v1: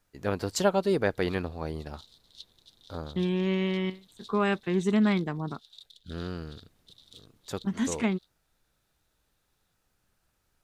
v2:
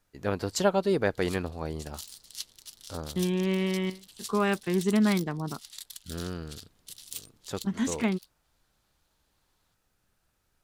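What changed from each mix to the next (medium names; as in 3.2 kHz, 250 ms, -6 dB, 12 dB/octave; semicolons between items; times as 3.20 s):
background: remove two resonant band-passes 1.3 kHz, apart 3 oct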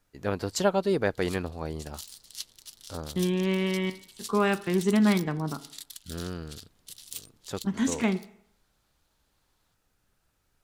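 reverb: on, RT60 0.70 s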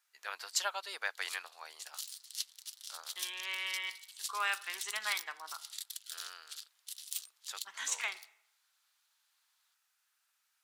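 master: add Bessel high-pass 1.5 kHz, order 4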